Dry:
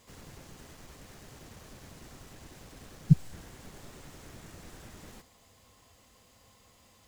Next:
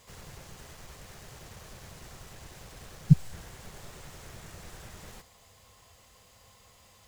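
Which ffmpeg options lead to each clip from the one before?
-af "equalizer=f=270:t=o:w=0.71:g=-10,volume=3.5dB"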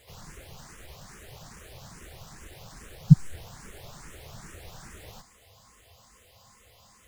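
-filter_complex "[0:a]asplit=2[a][b];[b]afreqshift=2.4[c];[a][c]amix=inputs=2:normalize=1,volume=4dB"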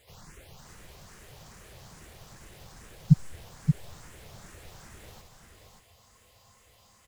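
-af "aecho=1:1:577:0.531,volume=-4dB"

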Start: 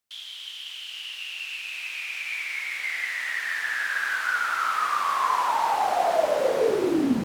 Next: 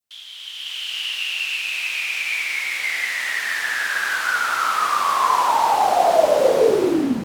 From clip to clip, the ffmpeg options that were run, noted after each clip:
-af "dynaudnorm=f=260:g=5:m=10.5dB,adynamicequalizer=threshold=0.0447:dfrequency=1700:dqfactor=0.94:tfrequency=1700:tqfactor=0.94:attack=5:release=100:ratio=0.375:range=3:mode=cutabove:tftype=bell"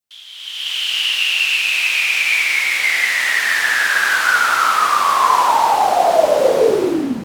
-af "dynaudnorm=f=110:g=9:m=8.5dB"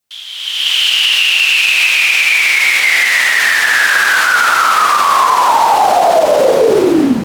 -af "alimiter=level_in=10.5dB:limit=-1dB:release=50:level=0:latency=1,volume=-1dB"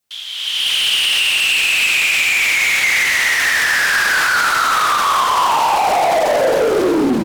-af "asoftclip=type=tanh:threshold=-12.5dB,aecho=1:1:266:0.447"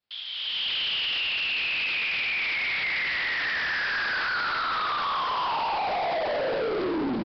-af "asoftclip=type=tanh:threshold=-18dB,aresample=11025,aresample=44100,volume=-7dB"

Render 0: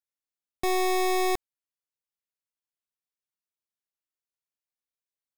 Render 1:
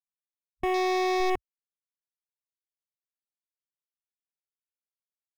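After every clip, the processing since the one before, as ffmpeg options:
-af "afwtdn=0.0141"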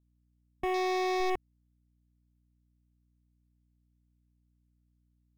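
-af "aeval=exprs='val(0)+0.000501*(sin(2*PI*60*n/s)+sin(2*PI*2*60*n/s)/2+sin(2*PI*3*60*n/s)/3+sin(2*PI*4*60*n/s)/4+sin(2*PI*5*60*n/s)/5)':c=same,volume=-4dB"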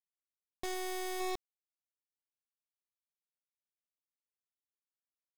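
-af "acrusher=bits=5:dc=4:mix=0:aa=0.000001,aeval=exprs='0.075*(cos(1*acos(clip(val(0)/0.075,-1,1)))-cos(1*PI/2))+0.0299*(cos(5*acos(clip(val(0)/0.075,-1,1)))-cos(5*PI/2))':c=same,volume=-2.5dB"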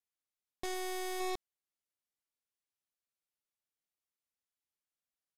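-af "aresample=32000,aresample=44100"

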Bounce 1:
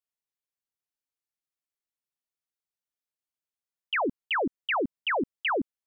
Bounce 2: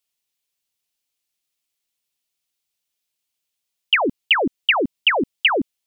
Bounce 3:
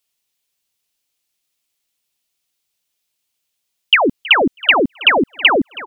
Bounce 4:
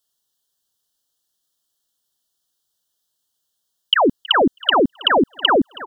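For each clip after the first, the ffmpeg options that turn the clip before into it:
-af "highshelf=f=2.1k:t=q:w=1.5:g=6.5,volume=7.5dB"
-filter_complex "[0:a]asplit=2[a][b];[b]adelay=322,lowpass=f=1.1k:p=1,volume=-11.5dB,asplit=2[c][d];[d]adelay=322,lowpass=f=1.1k:p=1,volume=0.35,asplit=2[e][f];[f]adelay=322,lowpass=f=1.1k:p=1,volume=0.35,asplit=2[g][h];[h]adelay=322,lowpass=f=1.1k:p=1,volume=0.35[i];[a][c][e][g][i]amix=inputs=5:normalize=0,volume=5.5dB"
-af "asuperstop=centerf=2300:order=8:qfactor=2"

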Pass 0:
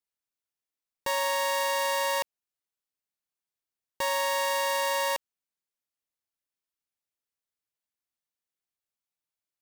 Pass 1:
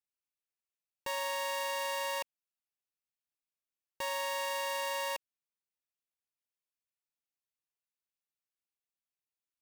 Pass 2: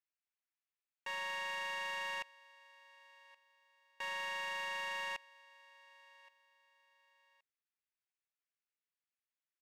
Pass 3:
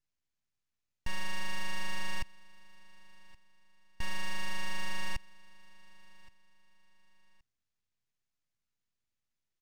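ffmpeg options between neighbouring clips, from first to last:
-af "equalizer=f=2.6k:w=5.6:g=5.5,volume=-8dB"
-af "bandpass=f=1.9k:t=q:w=1.3:csg=0,aecho=1:1:1122|2244:0.0708|0.0219,asoftclip=type=tanh:threshold=-32.5dB,volume=1.5dB"
-af "aresample=16000,aresample=44100,aeval=exprs='max(val(0),0)':c=same,bass=f=250:g=15,treble=f=4k:g=3,volume=6dB"

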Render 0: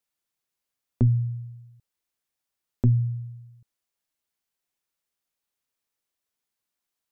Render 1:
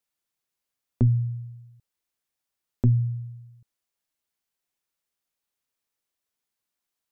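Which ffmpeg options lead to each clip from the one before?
-af anull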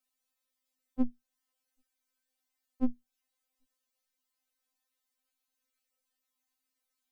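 -af "acompressor=threshold=-24dB:ratio=6,afftfilt=real='re*3.46*eq(mod(b,12),0)':imag='im*3.46*eq(mod(b,12),0)':win_size=2048:overlap=0.75,volume=2dB"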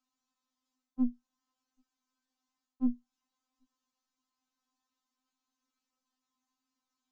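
-af "equalizer=f=125:t=o:w=1:g=-3,equalizer=f=250:t=o:w=1:g=12,equalizer=f=500:t=o:w=1:g=-8,equalizer=f=1k:t=o:w=1:g=11,equalizer=f=2k:t=o:w=1:g=-7,areverse,acompressor=threshold=-26dB:ratio=6,areverse,aresample=16000,aresample=44100"

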